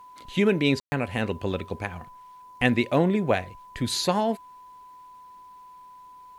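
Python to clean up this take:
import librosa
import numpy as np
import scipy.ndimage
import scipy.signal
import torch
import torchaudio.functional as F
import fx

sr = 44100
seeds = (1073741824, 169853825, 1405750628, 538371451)

y = fx.notch(x, sr, hz=1000.0, q=30.0)
y = fx.fix_ambience(y, sr, seeds[0], print_start_s=5.87, print_end_s=6.37, start_s=0.8, end_s=0.92)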